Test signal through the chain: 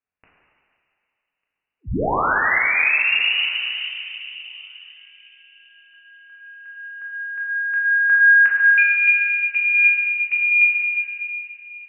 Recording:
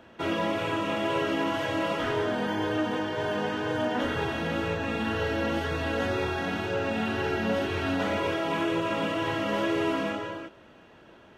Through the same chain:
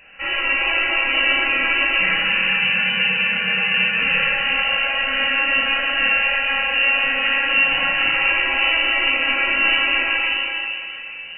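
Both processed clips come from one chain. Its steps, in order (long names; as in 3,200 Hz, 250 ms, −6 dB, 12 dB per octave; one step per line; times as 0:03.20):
high-pass filter 460 Hz 24 dB per octave
feedback echo with a low-pass in the loop 1,197 ms, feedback 28%, low-pass 900 Hz, level −21 dB
rectangular room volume 180 cubic metres, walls hard, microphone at 0.91 metres
voice inversion scrambler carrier 3,300 Hz
level +5 dB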